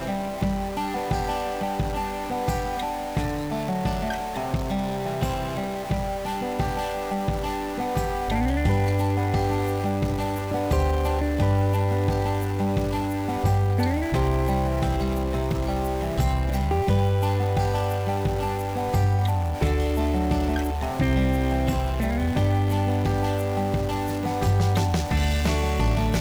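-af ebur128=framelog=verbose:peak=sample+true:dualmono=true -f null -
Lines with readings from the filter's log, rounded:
Integrated loudness:
  I:         -22.0 LUFS
  Threshold: -31.9 LUFS
Loudness range:
  LRA:         3.7 LU
  Threshold: -41.9 LUFS
  LRA low:   -24.6 LUFS
  LRA high:  -20.9 LUFS
Sample peak:
  Peak:      -12.8 dBFS
True peak:
  Peak:      -12.7 dBFS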